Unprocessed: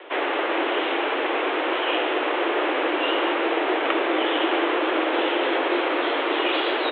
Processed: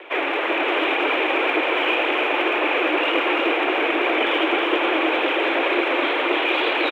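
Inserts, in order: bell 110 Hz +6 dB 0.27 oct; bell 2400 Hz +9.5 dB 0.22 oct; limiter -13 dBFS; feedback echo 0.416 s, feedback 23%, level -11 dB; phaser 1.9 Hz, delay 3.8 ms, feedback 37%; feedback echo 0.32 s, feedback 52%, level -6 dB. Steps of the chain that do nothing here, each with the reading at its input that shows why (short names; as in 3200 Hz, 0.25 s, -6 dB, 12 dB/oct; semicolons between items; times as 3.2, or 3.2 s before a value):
bell 110 Hz: input band starts at 230 Hz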